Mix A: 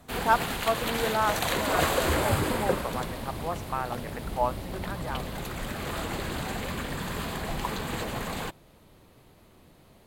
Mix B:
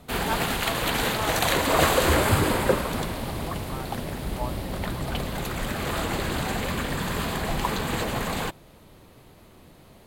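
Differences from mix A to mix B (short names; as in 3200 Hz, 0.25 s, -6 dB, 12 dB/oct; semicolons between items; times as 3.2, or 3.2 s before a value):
speech -8.0 dB; background +5.0 dB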